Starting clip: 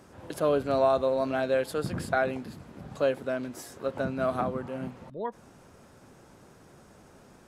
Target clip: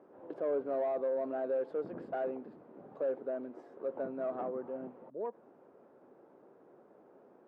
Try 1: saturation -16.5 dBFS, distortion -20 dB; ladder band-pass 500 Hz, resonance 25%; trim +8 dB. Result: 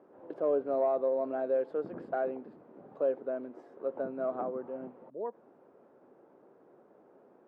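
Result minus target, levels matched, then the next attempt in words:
saturation: distortion -11 dB
saturation -26 dBFS, distortion -9 dB; ladder band-pass 500 Hz, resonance 25%; trim +8 dB

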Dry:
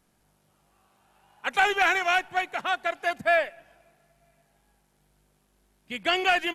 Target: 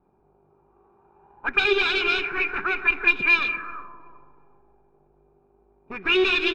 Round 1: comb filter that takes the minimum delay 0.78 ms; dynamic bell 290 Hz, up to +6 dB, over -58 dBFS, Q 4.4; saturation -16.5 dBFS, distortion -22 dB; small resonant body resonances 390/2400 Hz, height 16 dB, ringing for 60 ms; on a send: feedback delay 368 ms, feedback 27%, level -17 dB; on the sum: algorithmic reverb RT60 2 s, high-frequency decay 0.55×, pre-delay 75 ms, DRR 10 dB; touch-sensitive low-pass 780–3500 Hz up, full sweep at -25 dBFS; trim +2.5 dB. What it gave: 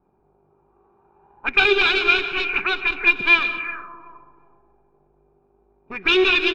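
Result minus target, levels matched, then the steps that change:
saturation: distortion -13 dB
change: saturation -28.5 dBFS, distortion -8 dB

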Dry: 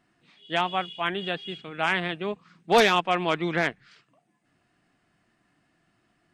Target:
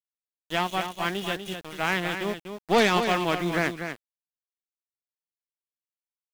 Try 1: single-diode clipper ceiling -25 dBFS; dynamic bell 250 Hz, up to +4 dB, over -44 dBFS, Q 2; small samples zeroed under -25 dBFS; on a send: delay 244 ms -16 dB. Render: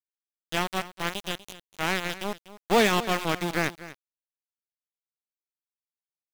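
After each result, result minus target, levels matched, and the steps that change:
small samples zeroed: distortion +11 dB; echo-to-direct -8 dB
change: small samples zeroed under -35 dBFS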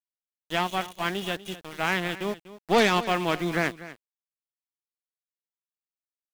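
echo-to-direct -8 dB
change: delay 244 ms -8 dB

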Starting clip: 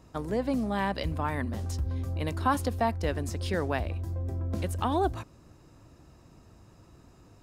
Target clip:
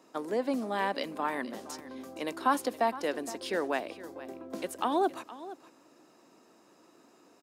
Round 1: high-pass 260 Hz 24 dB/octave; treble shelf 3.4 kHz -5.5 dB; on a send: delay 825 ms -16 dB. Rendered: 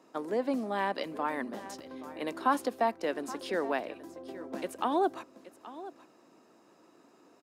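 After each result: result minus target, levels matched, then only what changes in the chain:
echo 359 ms late; 8 kHz band -4.5 dB
change: delay 466 ms -16 dB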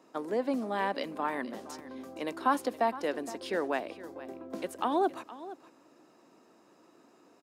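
8 kHz band -4.5 dB
remove: treble shelf 3.4 kHz -5.5 dB

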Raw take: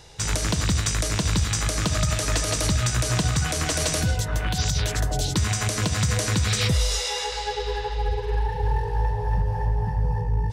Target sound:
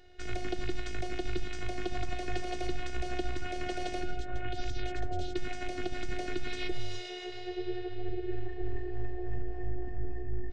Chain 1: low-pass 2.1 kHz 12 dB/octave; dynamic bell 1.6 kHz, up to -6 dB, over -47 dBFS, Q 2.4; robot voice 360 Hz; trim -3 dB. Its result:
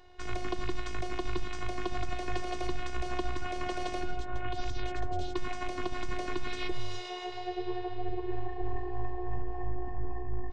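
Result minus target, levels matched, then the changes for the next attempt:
1 kHz band +3.0 dB
add after dynamic bell: Butterworth band-stop 980 Hz, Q 1.7

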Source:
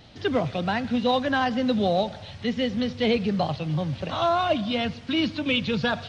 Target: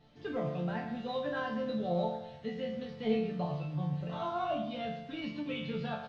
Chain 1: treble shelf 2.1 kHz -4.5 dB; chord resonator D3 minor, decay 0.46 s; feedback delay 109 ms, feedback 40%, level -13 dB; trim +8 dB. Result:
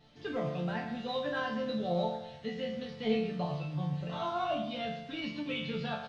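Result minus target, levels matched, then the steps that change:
4 kHz band +4.0 dB
change: treble shelf 2.1 kHz -11.5 dB

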